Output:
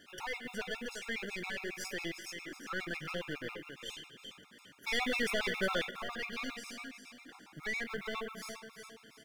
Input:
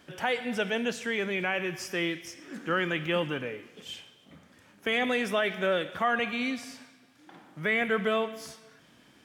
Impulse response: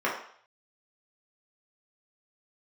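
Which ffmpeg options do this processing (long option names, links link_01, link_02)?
-filter_complex "[0:a]acompressor=threshold=-43dB:ratio=1.5,equalizer=frequency=650:width=2:gain=-7.5,asplit=2[link_01][link_02];[link_02]acrusher=bits=4:mode=log:mix=0:aa=0.000001,volume=-5.5dB[link_03];[link_01][link_03]amix=inputs=2:normalize=0,lowshelf=frequency=220:gain=-9,asplit=2[link_04][link_05];[link_05]aecho=0:1:364|728|1092|1456:0.355|0.138|0.054|0.021[link_06];[link_04][link_06]amix=inputs=2:normalize=0,aeval=exprs='(tanh(35.5*val(0)+0.55)-tanh(0.55))/35.5':channel_layout=same,asettb=1/sr,asplit=3[link_07][link_08][link_09];[link_07]atrim=end=4.874[link_10];[link_08]atrim=start=4.87:end=5.91,asetpts=PTS-STARTPTS,afade=type=in:duration=0.004:curve=qsin,afade=type=out:start_time=1.036:duration=0.004:curve=qsin,acontrast=61[link_11];[link_09]atrim=start=5.906[link_12];[link_10][link_11]acrossfade=duration=0.004:curve1=hsin:curve2=qsin[link_13];[link_13][link_12]acrossfade=duration=0.004:curve1=qsin:curve2=hsin,afftfilt=real='re*gt(sin(2*PI*7.3*pts/sr)*(1-2*mod(floor(b*sr/1024/700),2)),0)':imag='im*gt(sin(2*PI*7.3*pts/sr)*(1-2*mod(floor(b*sr/1024/700),2)),0)':win_size=1024:overlap=0.75,volume=1.5dB"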